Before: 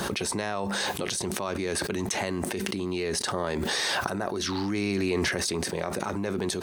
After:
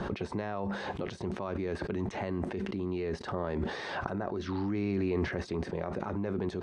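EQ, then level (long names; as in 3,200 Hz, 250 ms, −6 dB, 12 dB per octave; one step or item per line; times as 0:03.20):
low-pass filter 1,200 Hz 6 dB per octave
high-frequency loss of the air 92 metres
low-shelf EQ 74 Hz +9 dB
−3.5 dB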